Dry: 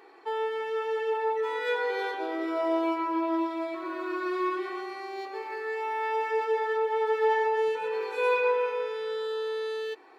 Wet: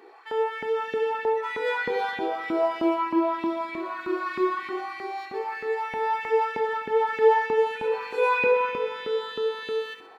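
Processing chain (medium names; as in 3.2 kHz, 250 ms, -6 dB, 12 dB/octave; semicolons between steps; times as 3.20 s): LFO high-pass saw up 3.2 Hz 220–2500 Hz; doubling 27 ms -14 dB; feedback echo behind a high-pass 66 ms, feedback 49%, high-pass 2.2 kHz, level -8 dB; spring tank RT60 2.6 s, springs 42 ms, chirp 75 ms, DRR 13 dB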